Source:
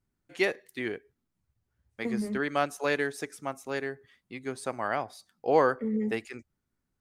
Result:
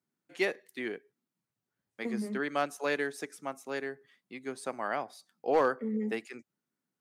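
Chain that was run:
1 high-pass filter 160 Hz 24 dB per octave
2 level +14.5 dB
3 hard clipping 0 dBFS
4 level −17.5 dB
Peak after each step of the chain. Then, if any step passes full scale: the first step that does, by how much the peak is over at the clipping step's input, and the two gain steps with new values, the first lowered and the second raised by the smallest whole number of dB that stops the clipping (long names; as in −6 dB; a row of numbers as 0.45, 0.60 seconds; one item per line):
−10.5, +4.0, 0.0, −17.5 dBFS
step 2, 4.0 dB
step 2 +10.5 dB, step 4 −13.5 dB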